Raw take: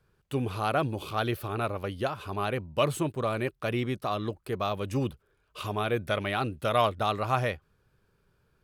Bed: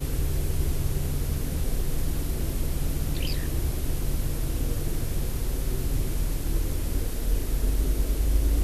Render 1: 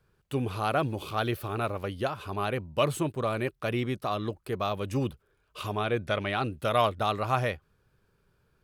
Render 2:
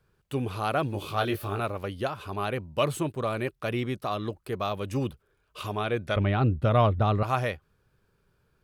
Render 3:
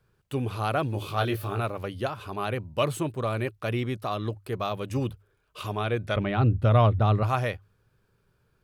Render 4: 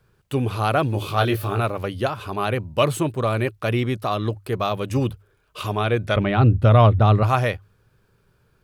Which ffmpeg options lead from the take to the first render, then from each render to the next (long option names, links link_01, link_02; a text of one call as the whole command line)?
ffmpeg -i in.wav -filter_complex "[0:a]asettb=1/sr,asplit=3[link_01][link_02][link_03];[link_01]atrim=end=0.684[link_04];[link_02]atrim=start=0.68:end=1.86,asetpts=PTS-STARTPTS,afade=type=in:duration=0.004:curve=qsin,afade=type=out:start_time=1.176:duration=0.004:curve=qsin,aeval=exprs='val(0)*gte(abs(val(0)),0.00211)':channel_layout=same[link_05];[link_03]atrim=start=1.856[link_06];[link_04][link_05]acrossfade=duration=0.004:curve1=hsin:curve2=qsin[link_07];[link_07][link_06]acrossfade=duration=0.004:curve1=qsin:curve2=hsin,asettb=1/sr,asplit=3[link_08][link_09][link_10];[link_08]atrim=end=5.774[link_11];[link_09]atrim=start=5.77:end=6.44,asetpts=PTS-STARTPTS,afade=type=in:duration=0.004:curve=qsin,afade=type=out:start_time=0.666:duration=0.004:curve=qsin,lowpass=8100[link_12];[link_10]atrim=start=6.436[link_13];[link_11][link_12]acrossfade=duration=0.004:curve1=hsin:curve2=qsin[link_14];[link_14][link_13]acrossfade=duration=0.004:curve1=qsin:curve2=hsin" out.wav
ffmpeg -i in.wav -filter_complex "[0:a]asettb=1/sr,asplit=3[link_01][link_02][link_03];[link_01]atrim=end=0.924[link_04];[link_02]atrim=start=0.92:end=1.6,asetpts=PTS-STARTPTS,afade=type=in:duration=0.004:curve=qsin,afade=type=out:start_time=0.676:duration=0.004:curve=qsin,asplit=2[link_05][link_06];[link_06]adelay=20,volume=-4dB[link_07];[link_05][link_07]amix=inputs=2:normalize=0,atrim=end_sample=29988[link_08];[link_03]atrim=start=1.596[link_09];[link_04][link_08]acrossfade=duration=0.004:curve1=hsin:curve2=qsin[link_10];[link_10][link_09]acrossfade=duration=0.004:curve1=qsin:curve2=hsin,asettb=1/sr,asplit=3[link_11][link_12][link_13];[link_11]atrim=end=6.164[link_14];[link_12]atrim=start=6.16:end=7.23,asetpts=PTS-STARTPTS,afade=type=in:duration=0.004:curve=qsin,afade=type=out:start_time=1.066:duration=0.004:curve=qsin,aemphasis=mode=reproduction:type=riaa[link_15];[link_13]atrim=start=7.226[link_16];[link_14][link_15]acrossfade=duration=0.004:curve1=hsin:curve2=qsin[link_17];[link_17][link_16]acrossfade=duration=0.004:curve1=qsin:curve2=hsin" out.wav
ffmpeg -i in.wav -af "equalizer=frequency=110:width_type=o:width=0.23:gain=6.5,bandreject=frequency=50:width_type=h:width=6,bandreject=frequency=100:width_type=h:width=6" out.wav
ffmpeg -i in.wav -af "volume=6.5dB,alimiter=limit=-3dB:level=0:latency=1" out.wav